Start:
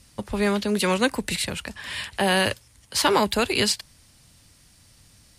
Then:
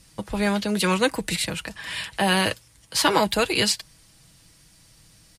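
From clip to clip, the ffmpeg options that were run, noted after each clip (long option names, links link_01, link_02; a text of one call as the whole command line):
ffmpeg -i in.wav -af "aecho=1:1:6.2:0.47" out.wav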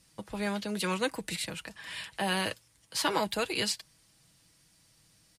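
ffmpeg -i in.wav -af "lowshelf=frequency=65:gain=-11,volume=-9dB" out.wav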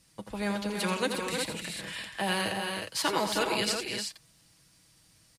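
ffmpeg -i in.wav -af "aecho=1:1:83|205|241|310|361:0.376|0.119|0.119|0.447|0.501" out.wav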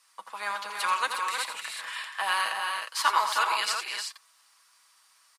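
ffmpeg -i in.wav -af "highpass=frequency=1100:width_type=q:width=3.8" out.wav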